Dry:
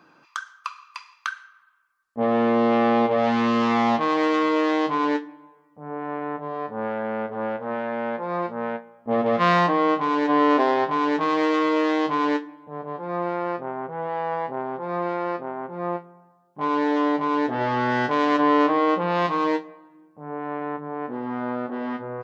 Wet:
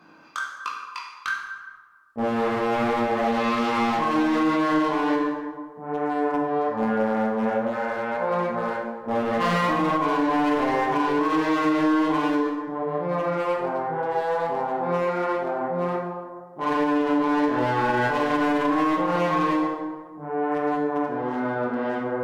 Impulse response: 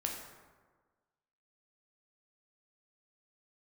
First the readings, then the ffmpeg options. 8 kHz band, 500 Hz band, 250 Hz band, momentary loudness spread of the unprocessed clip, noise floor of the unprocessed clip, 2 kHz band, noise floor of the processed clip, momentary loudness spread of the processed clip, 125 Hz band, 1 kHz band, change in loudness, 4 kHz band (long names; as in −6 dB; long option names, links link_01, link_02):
can't be measured, −0.5 dB, +0.5 dB, 14 LU, −59 dBFS, +0.5 dB, −43 dBFS, 10 LU, +1.0 dB, −0.5 dB, −0.5 dB, −1.5 dB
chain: -filter_complex "[0:a]flanger=delay=17.5:depth=5.6:speed=1.3,asplit=2[link_01][link_02];[link_02]acompressor=threshold=-30dB:ratio=6,volume=-3dB[link_03];[link_01][link_03]amix=inputs=2:normalize=0,volume=20dB,asoftclip=hard,volume=-20dB[link_04];[1:a]atrim=start_sample=2205,asetrate=38808,aresample=44100[link_05];[link_04][link_05]afir=irnorm=-1:irlink=0,alimiter=limit=-14dB:level=0:latency=1:release=67"